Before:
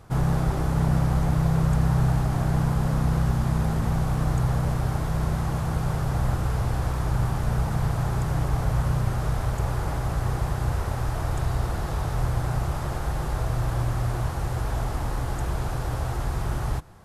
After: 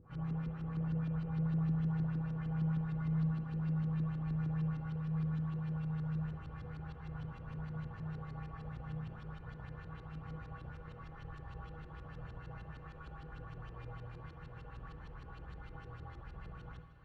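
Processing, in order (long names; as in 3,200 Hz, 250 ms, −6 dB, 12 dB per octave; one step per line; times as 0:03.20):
lower of the sound and its delayed copy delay 0.7 ms
upward compression, threshold −28 dBFS
tuned comb filter 160 Hz, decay 0.46 s, harmonics odd, mix 90%
auto-filter low-pass saw up 6.5 Hz 290–4,200 Hz
feedback delay with all-pass diffusion 1,698 ms, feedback 47%, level −15 dB
on a send at −8 dB: convolution reverb RT60 1.2 s, pre-delay 51 ms
on the sum: level −6.5 dB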